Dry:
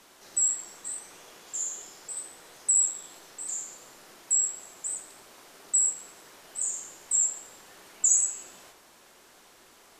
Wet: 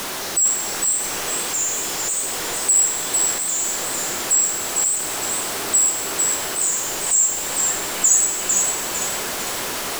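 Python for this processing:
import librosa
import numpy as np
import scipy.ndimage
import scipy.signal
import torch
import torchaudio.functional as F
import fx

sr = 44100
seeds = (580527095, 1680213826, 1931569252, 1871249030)

y = x + 0.5 * 10.0 ** (-27.5 / 20.0) * np.sign(x)
y = fx.echo_feedback(y, sr, ms=452, feedback_pct=40, wet_db=-4.0)
y = y * librosa.db_to_amplitude(5.0)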